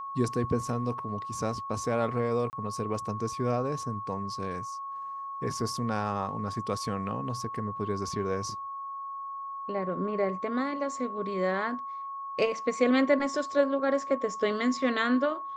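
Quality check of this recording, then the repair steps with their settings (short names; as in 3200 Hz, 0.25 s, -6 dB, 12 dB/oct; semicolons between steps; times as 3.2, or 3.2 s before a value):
tone 1100 Hz -35 dBFS
2.5–2.53 gap 29 ms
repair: notch 1100 Hz, Q 30; interpolate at 2.5, 29 ms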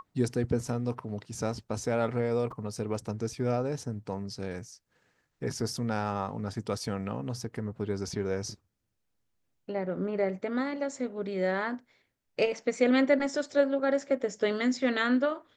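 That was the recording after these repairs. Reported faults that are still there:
none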